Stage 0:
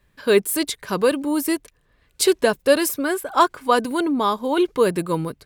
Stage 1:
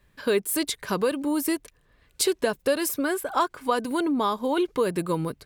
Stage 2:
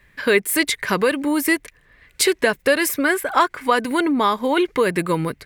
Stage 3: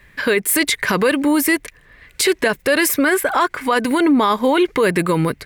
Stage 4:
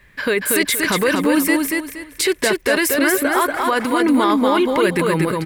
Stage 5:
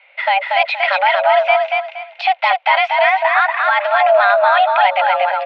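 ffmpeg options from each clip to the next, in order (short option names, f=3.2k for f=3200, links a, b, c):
-af "acompressor=threshold=-23dB:ratio=2.5"
-af "equalizer=f=2k:t=o:w=0.71:g=12.5,volume=5dB"
-af "alimiter=limit=-13.5dB:level=0:latency=1:release=30,volume=6dB"
-af "aecho=1:1:236|472|708|944:0.708|0.198|0.0555|0.0155,volume=-2dB"
-af "highpass=f=180:t=q:w=0.5412,highpass=f=180:t=q:w=1.307,lowpass=f=3.2k:t=q:w=0.5176,lowpass=f=3.2k:t=q:w=0.7071,lowpass=f=3.2k:t=q:w=1.932,afreqshift=380,volume=3.5dB"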